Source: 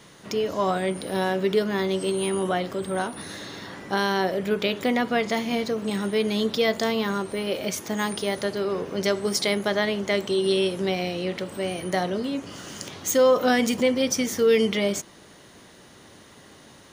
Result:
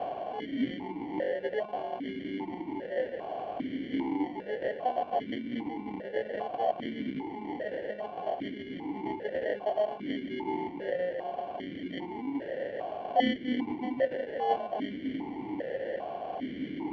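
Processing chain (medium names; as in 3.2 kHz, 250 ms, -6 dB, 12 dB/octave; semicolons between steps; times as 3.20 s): one-bit delta coder 32 kbps, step -21.5 dBFS; bass shelf 430 Hz -9 dB; in parallel at -2 dB: level held to a coarse grid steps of 20 dB; on the sum: reverb removal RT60 0.64 s; sample-and-hold 35×; distance through air 250 m; stepped vowel filter 2.5 Hz; trim +5.5 dB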